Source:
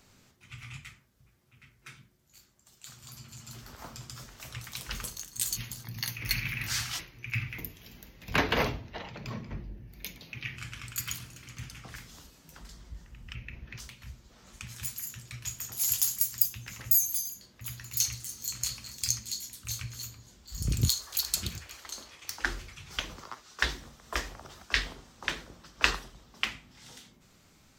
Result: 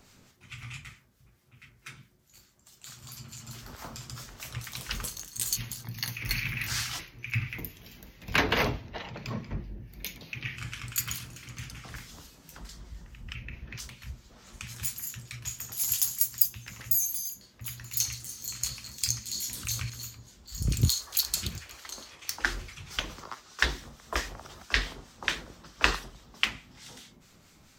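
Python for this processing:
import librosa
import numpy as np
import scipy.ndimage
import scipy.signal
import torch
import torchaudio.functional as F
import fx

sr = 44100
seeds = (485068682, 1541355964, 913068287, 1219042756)

p1 = fx.rider(x, sr, range_db=4, speed_s=2.0)
p2 = x + (p1 * librosa.db_to_amplitude(-1.0))
p3 = fx.harmonic_tremolo(p2, sr, hz=4.6, depth_pct=50, crossover_hz=1300.0)
p4 = fx.env_flatten(p3, sr, amount_pct=50, at=(19.34, 19.9))
y = p4 * librosa.db_to_amplitude(-2.5)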